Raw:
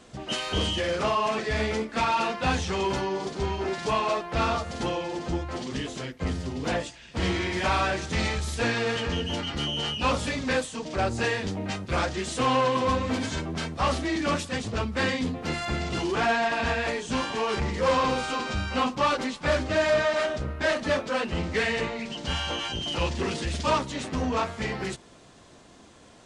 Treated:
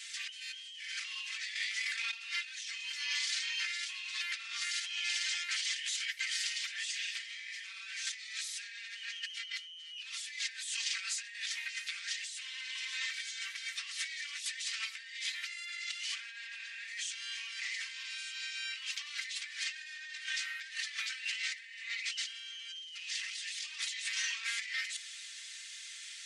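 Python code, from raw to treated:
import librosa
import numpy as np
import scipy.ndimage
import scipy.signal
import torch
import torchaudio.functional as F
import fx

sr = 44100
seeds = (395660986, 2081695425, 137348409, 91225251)

y = fx.over_compress(x, sr, threshold_db=-31.0, ratio=-0.5, at=(1.54, 2.13))
y = scipy.signal.sosfilt(scipy.signal.ellip(4, 1.0, 70, 1900.0, 'highpass', fs=sr, output='sos'), y)
y = y + 0.63 * np.pad(y, (int(4.4 * sr / 1000.0), 0))[:len(y)]
y = fx.over_compress(y, sr, threshold_db=-45.0, ratio=-1.0)
y = y * 10.0 ** (3.5 / 20.0)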